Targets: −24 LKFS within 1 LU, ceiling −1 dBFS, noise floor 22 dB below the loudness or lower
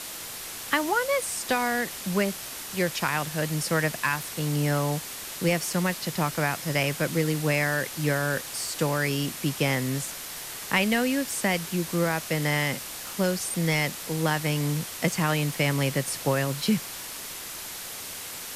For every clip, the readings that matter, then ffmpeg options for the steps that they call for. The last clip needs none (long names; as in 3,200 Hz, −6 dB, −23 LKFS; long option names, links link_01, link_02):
background noise floor −38 dBFS; target noise floor −49 dBFS; integrated loudness −27.0 LKFS; sample peak −10.0 dBFS; target loudness −24.0 LKFS
→ -af "afftdn=noise_reduction=11:noise_floor=-38"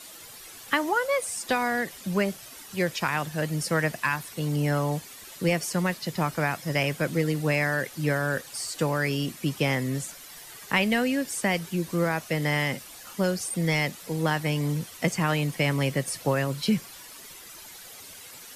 background noise floor −45 dBFS; target noise floor −49 dBFS
→ -af "afftdn=noise_reduction=6:noise_floor=-45"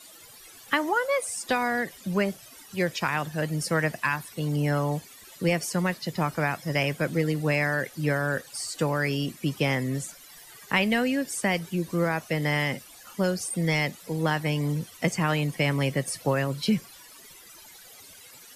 background noise floor −49 dBFS; integrated loudness −27.0 LKFS; sample peak −10.5 dBFS; target loudness −24.0 LKFS
→ -af "volume=3dB"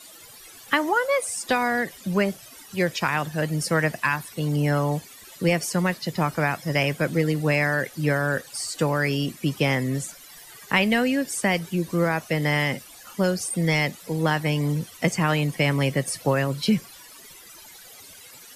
integrated loudness −24.0 LKFS; sample peak −7.5 dBFS; background noise floor −46 dBFS